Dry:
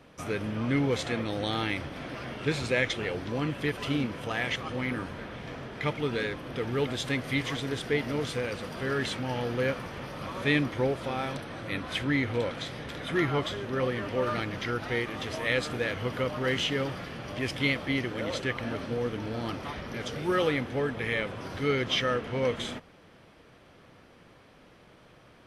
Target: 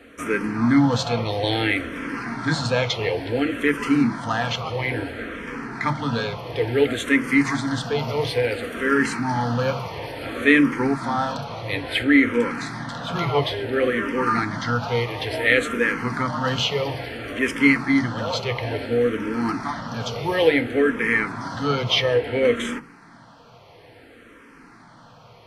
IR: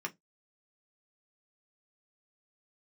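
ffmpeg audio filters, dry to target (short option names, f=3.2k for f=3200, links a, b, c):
-filter_complex "[0:a]asplit=2[a][b];[1:a]atrim=start_sample=2205,asetrate=33957,aresample=44100[c];[b][c]afir=irnorm=-1:irlink=0,volume=-2.5dB[d];[a][d]amix=inputs=2:normalize=0,asplit=2[e][f];[f]afreqshift=-0.58[g];[e][g]amix=inputs=2:normalize=1,volume=6dB"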